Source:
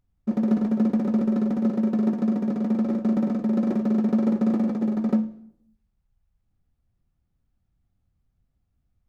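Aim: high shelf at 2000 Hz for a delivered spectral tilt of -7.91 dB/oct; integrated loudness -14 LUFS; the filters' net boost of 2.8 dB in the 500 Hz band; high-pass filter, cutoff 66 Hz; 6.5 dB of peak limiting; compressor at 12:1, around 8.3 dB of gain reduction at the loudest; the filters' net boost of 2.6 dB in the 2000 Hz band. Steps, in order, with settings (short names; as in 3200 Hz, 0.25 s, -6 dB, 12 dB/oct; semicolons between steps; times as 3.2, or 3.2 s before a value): HPF 66 Hz; bell 500 Hz +3.5 dB; high shelf 2000 Hz -3.5 dB; bell 2000 Hz +5 dB; compressor 12:1, threshold -25 dBFS; gain +18 dB; limiter -6 dBFS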